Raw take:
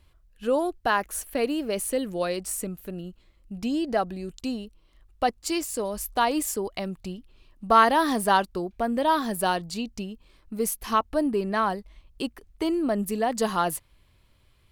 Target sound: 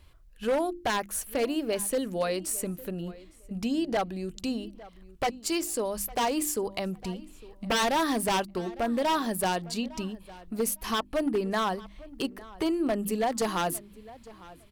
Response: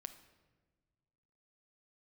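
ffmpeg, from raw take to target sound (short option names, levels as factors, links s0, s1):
-filter_complex "[0:a]bandreject=f=50:t=h:w=6,bandreject=f=100:t=h:w=6,bandreject=f=150:t=h:w=6,bandreject=f=200:t=h:w=6,bandreject=f=250:t=h:w=6,bandreject=f=300:t=h:w=6,bandreject=f=350:t=h:w=6,asplit=2[s0][s1];[s1]acompressor=threshold=0.0126:ratio=6,volume=1.19[s2];[s0][s2]amix=inputs=2:normalize=0,aeval=exprs='0.141*(abs(mod(val(0)/0.141+3,4)-2)-1)':c=same,asplit=2[s3][s4];[s4]adelay=856,lowpass=f=3300:p=1,volume=0.106,asplit=2[s5][s6];[s6]adelay=856,lowpass=f=3300:p=1,volume=0.2[s7];[s3][s5][s7]amix=inputs=3:normalize=0,volume=0.708"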